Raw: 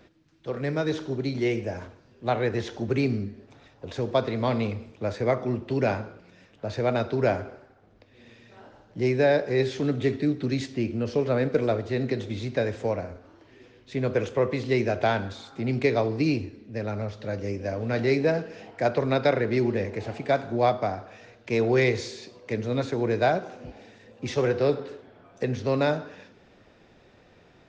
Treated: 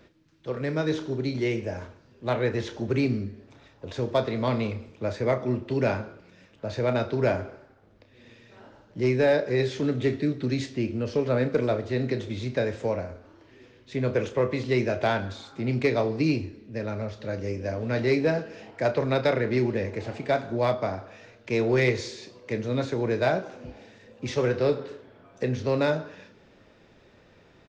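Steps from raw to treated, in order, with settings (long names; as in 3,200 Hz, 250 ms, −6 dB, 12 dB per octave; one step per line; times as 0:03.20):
double-tracking delay 32 ms −11 dB
in parallel at −9 dB: wave folding −15 dBFS
on the sum: notch filter 740 Hz, Q 12
level −3 dB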